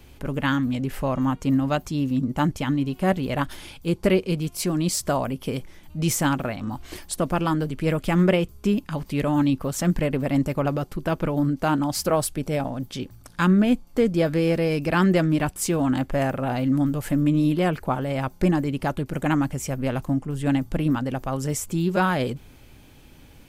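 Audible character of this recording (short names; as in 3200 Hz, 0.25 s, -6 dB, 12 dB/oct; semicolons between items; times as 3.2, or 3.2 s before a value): noise floor -49 dBFS; spectral tilt -6.5 dB/oct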